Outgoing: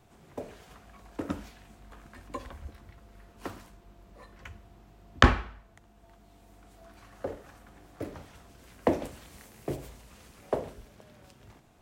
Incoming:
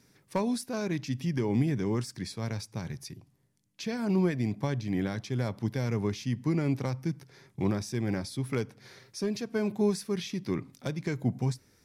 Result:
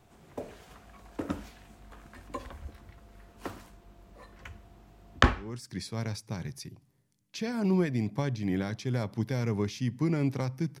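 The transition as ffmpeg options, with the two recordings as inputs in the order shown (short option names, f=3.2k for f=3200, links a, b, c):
-filter_complex "[0:a]apad=whole_dur=10.8,atrim=end=10.8,atrim=end=5.78,asetpts=PTS-STARTPTS[a];[1:a]atrim=start=1.59:end=7.25,asetpts=PTS-STARTPTS[b];[a][b]acrossfade=d=0.64:c1=qua:c2=qua"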